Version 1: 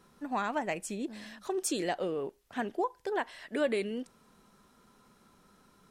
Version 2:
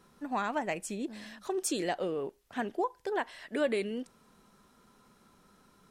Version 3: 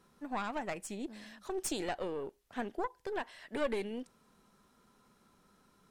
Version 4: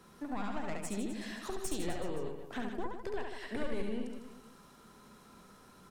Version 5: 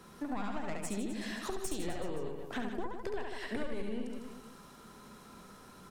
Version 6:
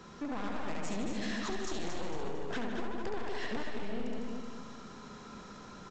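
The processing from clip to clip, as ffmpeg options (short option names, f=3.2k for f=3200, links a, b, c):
-af anull
-af "aeval=exprs='(tanh(14.1*val(0)+0.75)-tanh(0.75))/14.1':c=same"
-filter_complex "[0:a]acrossover=split=170[a][b];[b]acompressor=threshold=-48dB:ratio=5[c];[a][c]amix=inputs=2:normalize=0,asplit=2[d][e];[e]aecho=0:1:70|154|254.8|375.8|520.9:0.631|0.398|0.251|0.158|0.1[f];[d][f]amix=inputs=2:normalize=0,volume=7.5dB"
-af "acompressor=threshold=-39dB:ratio=2,volume=4dB"
-af "aresample=16000,asoftclip=type=hard:threshold=-37dB,aresample=44100,aecho=1:1:226|452|678|904|1130:0.501|0.205|0.0842|0.0345|0.0142,volume=3.5dB"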